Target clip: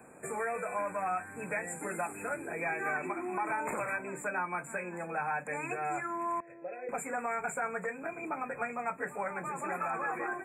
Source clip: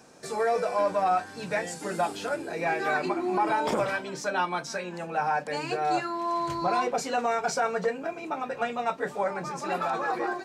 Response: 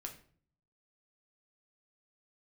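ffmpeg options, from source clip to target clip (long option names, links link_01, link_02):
-filter_complex "[0:a]asettb=1/sr,asplit=3[link_01][link_02][link_03];[link_01]atrim=end=6.404[link_04];[link_02]atrim=start=6.4:end=6.89,asetpts=PTS-STARTPTS,afade=type=in:duration=0.004:curve=qsin,afade=type=out:start_time=0.486:duration=0.004:curve=qsin,asplit=3[link_05][link_06][link_07];[link_05]bandpass=frequency=530:width_type=q:width=8,volume=0dB[link_08];[link_06]bandpass=frequency=1840:width_type=q:width=8,volume=-6dB[link_09];[link_07]bandpass=frequency=2480:width_type=q:width=8,volume=-9dB[link_10];[link_08][link_09][link_10]amix=inputs=3:normalize=0[link_11];[link_03]atrim=start=6.886[link_12];[link_04][link_11]acrossfade=duration=0.004:curve1=hsin:curve2=qsin[link_13];[link_13][link_12]acrossfade=duration=0.004:curve1=qsin:curve2=hsin,acrossover=split=230|1200[link_14][link_15][link_16];[link_14]acompressor=threshold=-50dB:ratio=4[link_17];[link_15]acompressor=threshold=-39dB:ratio=4[link_18];[link_16]acompressor=threshold=-33dB:ratio=4[link_19];[link_17][link_18][link_19]amix=inputs=3:normalize=0,afftfilt=real='re*(1-between(b*sr/4096,2600,7000))':imag='im*(1-between(b*sr/4096,2600,7000))':win_size=4096:overlap=0.75"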